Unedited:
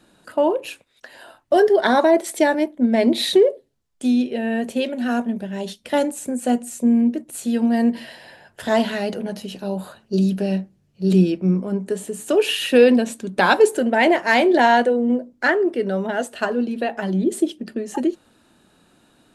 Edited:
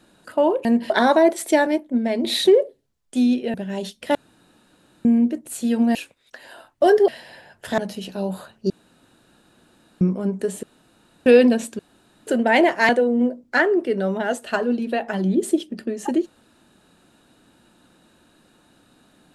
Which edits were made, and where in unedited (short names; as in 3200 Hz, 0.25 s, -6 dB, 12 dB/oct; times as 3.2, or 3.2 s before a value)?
0.65–1.78 swap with 7.78–8.03
2.55–3.12 fade out linear, to -8 dB
4.42–5.37 cut
5.98–6.88 room tone
8.73–9.25 cut
10.17–11.48 room tone
12.1–12.73 room tone
13.26–13.74 room tone
14.36–14.78 cut